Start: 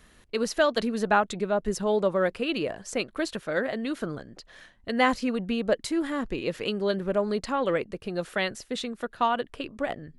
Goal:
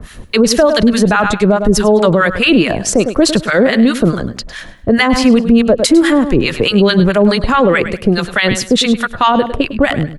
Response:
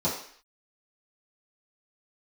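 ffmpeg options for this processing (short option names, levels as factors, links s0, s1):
-filter_complex "[0:a]acrossover=split=1000[s0][s1];[s0]aeval=exprs='val(0)*(1-1/2+1/2*cos(2*PI*4.7*n/s))':c=same[s2];[s1]aeval=exprs='val(0)*(1-1/2-1/2*cos(2*PI*4.7*n/s))':c=same[s3];[s2][s3]amix=inputs=2:normalize=0,acrossover=split=200|1400|3800[s4][s5][s6][s7];[s4]acontrast=55[s8];[s8][s5][s6][s7]amix=inputs=4:normalize=0,aecho=1:1:103|206|309:0.2|0.0499|0.0125,alimiter=level_in=17.8:limit=0.891:release=50:level=0:latency=1,volume=0.891"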